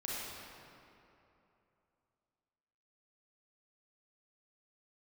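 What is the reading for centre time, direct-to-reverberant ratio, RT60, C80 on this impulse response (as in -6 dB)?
0.175 s, -7.0 dB, 2.9 s, -2.0 dB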